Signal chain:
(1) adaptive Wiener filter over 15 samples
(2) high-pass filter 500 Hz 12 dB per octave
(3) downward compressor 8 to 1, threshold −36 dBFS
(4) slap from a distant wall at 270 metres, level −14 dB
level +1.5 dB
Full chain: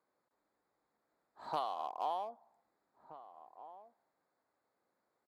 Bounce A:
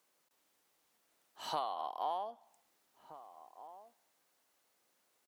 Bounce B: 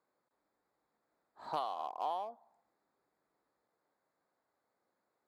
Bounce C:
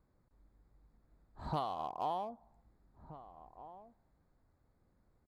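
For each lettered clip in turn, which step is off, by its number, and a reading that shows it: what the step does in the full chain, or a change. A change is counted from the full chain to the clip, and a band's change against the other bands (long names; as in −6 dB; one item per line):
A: 1, 4 kHz band +5.0 dB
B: 4, echo-to-direct ratio −19.0 dB to none audible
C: 2, 125 Hz band +18.0 dB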